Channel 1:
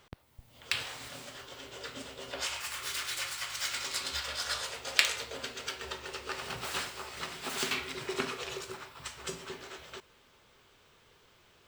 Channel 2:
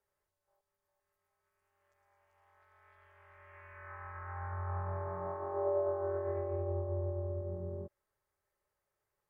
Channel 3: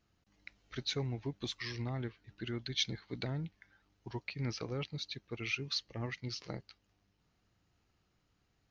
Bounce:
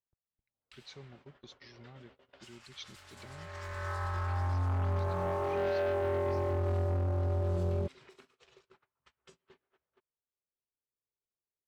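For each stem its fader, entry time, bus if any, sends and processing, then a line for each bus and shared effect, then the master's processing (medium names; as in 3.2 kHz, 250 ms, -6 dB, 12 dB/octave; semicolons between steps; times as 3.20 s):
-13.0 dB, 0.00 s, no send, level-controlled noise filter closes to 710 Hz, open at -32 dBFS; compression 10:1, threshold -41 dBFS, peak gain reduction 22.5 dB
+0.5 dB, 0.00 s, no send, low-pass 2 kHz; tilt EQ -1.5 dB/octave; waveshaping leveller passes 3
-14.5 dB, 0.00 s, no send, comb 5.3 ms, depth 43%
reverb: none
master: gate -57 dBFS, range -26 dB; peak limiter -27.5 dBFS, peak gain reduction 7 dB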